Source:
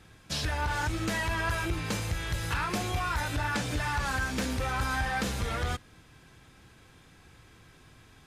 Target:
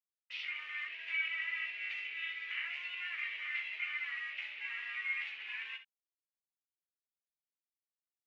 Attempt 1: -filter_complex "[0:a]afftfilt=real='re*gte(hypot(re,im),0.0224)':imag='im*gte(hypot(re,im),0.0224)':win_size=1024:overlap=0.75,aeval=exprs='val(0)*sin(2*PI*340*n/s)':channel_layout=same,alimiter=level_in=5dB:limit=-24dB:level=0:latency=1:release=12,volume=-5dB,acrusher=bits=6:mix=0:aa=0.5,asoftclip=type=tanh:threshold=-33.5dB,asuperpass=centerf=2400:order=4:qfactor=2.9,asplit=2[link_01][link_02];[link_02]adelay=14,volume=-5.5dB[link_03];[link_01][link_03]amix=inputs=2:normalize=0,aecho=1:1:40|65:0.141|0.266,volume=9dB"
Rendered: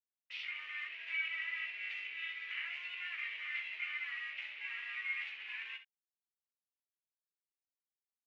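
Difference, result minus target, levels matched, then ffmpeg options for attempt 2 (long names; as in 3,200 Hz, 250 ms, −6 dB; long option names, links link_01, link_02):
soft clipping: distortion +12 dB
-filter_complex "[0:a]afftfilt=real='re*gte(hypot(re,im),0.0224)':imag='im*gte(hypot(re,im),0.0224)':win_size=1024:overlap=0.75,aeval=exprs='val(0)*sin(2*PI*340*n/s)':channel_layout=same,alimiter=level_in=5dB:limit=-24dB:level=0:latency=1:release=12,volume=-5dB,acrusher=bits=6:mix=0:aa=0.5,asoftclip=type=tanh:threshold=-26dB,asuperpass=centerf=2400:order=4:qfactor=2.9,asplit=2[link_01][link_02];[link_02]adelay=14,volume=-5.5dB[link_03];[link_01][link_03]amix=inputs=2:normalize=0,aecho=1:1:40|65:0.141|0.266,volume=9dB"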